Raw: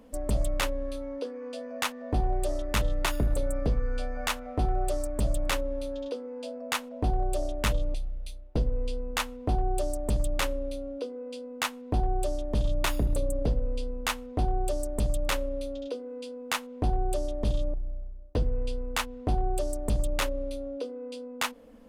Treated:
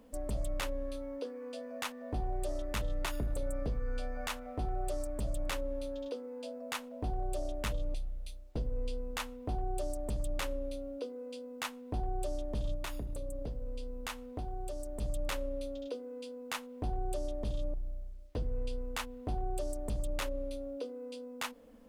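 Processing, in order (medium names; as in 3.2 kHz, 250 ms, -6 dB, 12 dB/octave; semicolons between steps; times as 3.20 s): peak limiter -22.5 dBFS, peak gain reduction 4.5 dB; 12.74–15.01 s: compression 2.5:1, threshold -32 dBFS, peak gain reduction 5 dB; word length cut 12-bit, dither none; trim -5 dB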